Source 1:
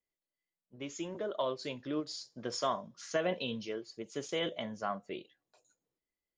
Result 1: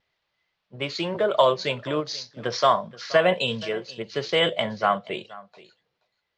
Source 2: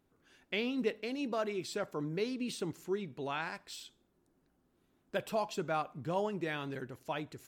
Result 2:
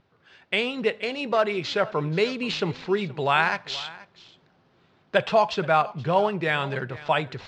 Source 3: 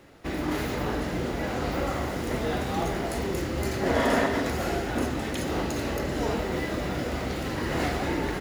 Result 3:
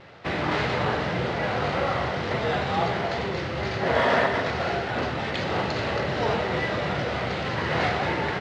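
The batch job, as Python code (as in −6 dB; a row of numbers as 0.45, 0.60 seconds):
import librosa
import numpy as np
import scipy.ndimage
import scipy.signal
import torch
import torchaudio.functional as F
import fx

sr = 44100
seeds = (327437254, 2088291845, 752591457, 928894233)

y = scipy.signal.sosfilt(scipy.signal.butter(4, 95.0, 'highpass', fs=sr, output='sos'), x)
y = y + 10.0 ** (-19.5 / 20.0) * np.pad(y, (int(478 * sr / 1000.0), 0))[:len(y)]
y = np.repeat(y[::4], 4)[:len(y)]
y = fx.peak_eq(y, sr, hz=280.0, db=-12.5, octaves=0.91)
y = fx.rider(y, sr, range_db=4, speed_s=2.0)
y = fx.vibrato(y, sr, rate_hz=0.42, depth_cents=11.0)
y = scipy.signal.sosfilt(scipy.signal.butter(4, 4600.0, 'lowpass', fs=sr, output='sos'), y)
y = y * 10.0 ** (-26 / 20.0) / np.sqrt(np.mean(np.square(y)))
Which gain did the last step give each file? +15.0, +15.0, +6.0 decibels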